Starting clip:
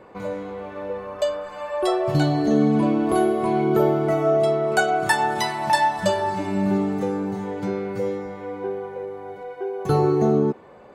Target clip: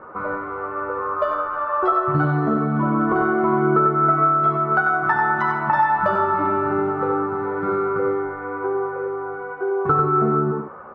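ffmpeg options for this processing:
ffmpeg -i in.wav -filter_complex "[0:a]lowpass=frequency=1300:width_type=q:width=12,asplit=2[link_01][link_02];[link_02]aecho=0:1:13|69:0.596|0.398[link_03];[link_01][link_03]amix=inputs=2:normalize=0,acompressor=threshold=-16dB:ratio=6,asplit=2[link_04][link_05];[link_05]aecho=0:1:94:0.531[link_06];[link_04][link_06]amix=inputs=2:normalize=0" out.wav

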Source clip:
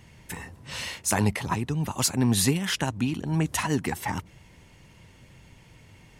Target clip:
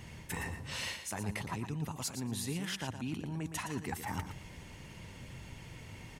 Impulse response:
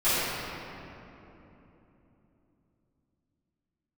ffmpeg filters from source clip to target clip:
-af "areverse,acompressor=threshold=-38dB:ratio=12,areverse,aecho=1:1:116|232|348:0.355|0.0639|0.0115,volume=3dB"

